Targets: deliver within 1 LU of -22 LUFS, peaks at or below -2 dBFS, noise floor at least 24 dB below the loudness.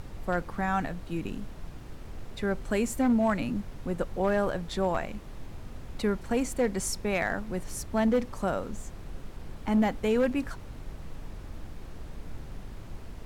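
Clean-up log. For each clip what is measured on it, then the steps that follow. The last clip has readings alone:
clipped samples 0.4%; clipping level -18.5 dBFS; noise floor -44 dBFS; noise floor target -54 dBFS; loudness -29.5 LUFS; peak level -18.5 dBFS; loudness target -22.0 LUFS
-> clip repair -18.5 dBFS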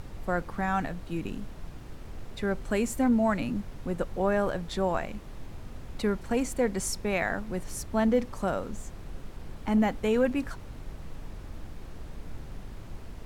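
clipped samples 0.0%; noise floor -44 dBFS; noise floor target -54 dBFS
-> noise print and reduce 10 dB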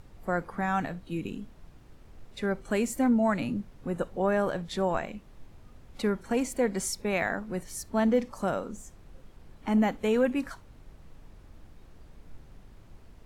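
noise floor -53 dBFS; noise floor target -54 dBFS
-> noise print and reduce 6 dB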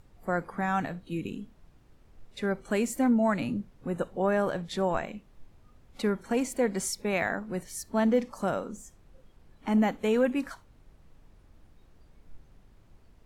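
noise floor -59 dBFS; loudness -29.5 LUFS; peak level -14.0 dBFS; loudness target -22.0 LUFS
-> trim +7.5 dB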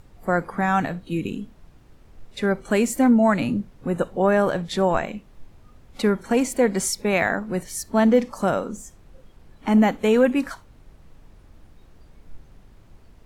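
loudness -22.0 LUFS; peak level -6.5 dBFS; noise floor -51 dBFS

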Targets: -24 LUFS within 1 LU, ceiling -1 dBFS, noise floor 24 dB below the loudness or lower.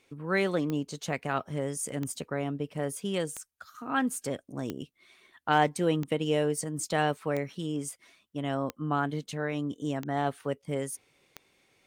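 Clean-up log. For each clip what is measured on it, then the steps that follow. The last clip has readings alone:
clicks found 9; loudness -31.5 LUFS; peak level -11.0 dBFS; loudness target -24.0 LUFS
-> de-click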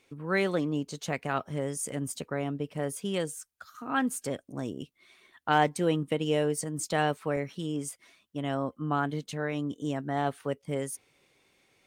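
clicks found 0; loudness -31.5 LUFS; peak level -11.0 dBFS; loudness target -24.0 LUFS
-> trim +7.5 dB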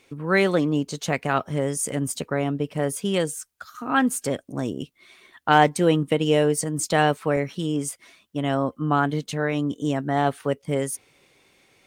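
loudness -24.0 LUFS; peak level -3.5 dBFS; noise floor -64 dBFS

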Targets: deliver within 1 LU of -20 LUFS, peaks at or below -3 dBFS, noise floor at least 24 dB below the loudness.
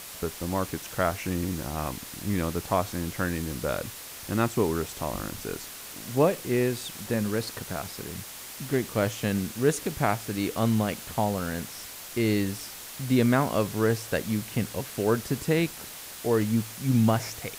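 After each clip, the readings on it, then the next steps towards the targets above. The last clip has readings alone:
noise floor -42 dBFS; noise floor target -53 dBFS; loudness -28.5 LUFS; peak level -9.0 dBFS; loudness target -20.0 LUFS
-> noise reduction 11 dB, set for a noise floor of -42 dBFS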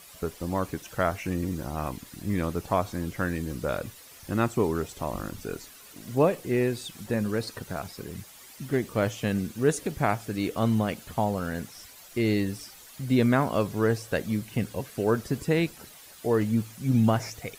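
noise floor -49 dBFS; noise floor target -53 dBFS
-> noise reduction 6 dB, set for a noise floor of -49 dBFS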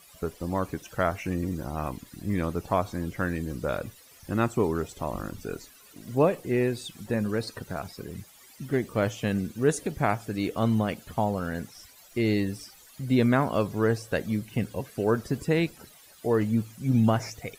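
noise floor -54 dBFS; loudness -28.5 LUFS; peak level -9.5 dBFS; loudness target -20.0 LUFS
-> trim +8.5 dB; peak limiter -3 dBFS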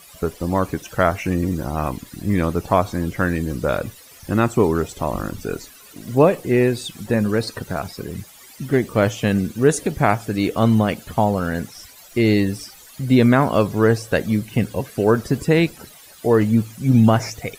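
loudness -20.0 LUFS; peak level -3.0 dBFS; noise floor -45 dBFS

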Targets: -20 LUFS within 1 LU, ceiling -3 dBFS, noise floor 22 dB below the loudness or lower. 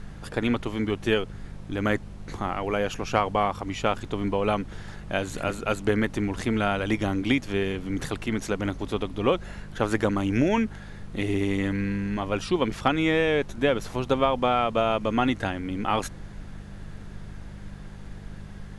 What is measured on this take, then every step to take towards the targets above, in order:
hum 50 Hz; highest harmonic 200 Hz; hum level -40 dBFS; noise floor -41 dBFS; noise floor target -49 dBFS; loudness -26.5 LUFS; peak level -6.5 dBFS; loudness target -20.0 LUFS
-> de-hum 50 Hz, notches 4; noise print and reduce 8 dB; trim +6.5 dB; peak limiter -3 dBFS

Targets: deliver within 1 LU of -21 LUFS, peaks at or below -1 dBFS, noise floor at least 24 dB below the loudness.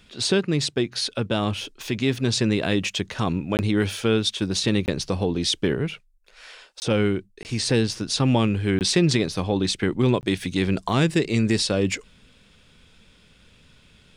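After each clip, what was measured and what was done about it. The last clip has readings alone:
dropouts 6; longest dropout 19 ms; loudness -23.5 LUFS; peak level -7.0 dBFS; loudness target -21.0 LUFS
-> interpolate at 3.57/4.86/6.80/7.43/8.79/10.21 s, 19 ms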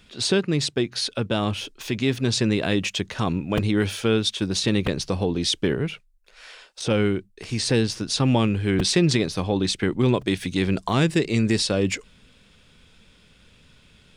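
dropouts 0; loudness -23.5 LUFS; peak level -7.0 dBFS; loudness target -21.0 LUFS
-> trim +2.5 dB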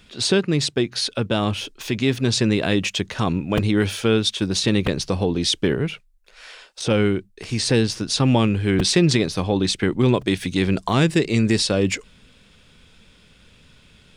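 loudness -21.0 LUFS; peak level -4.5 dBFS; noise floor -54 dBFS

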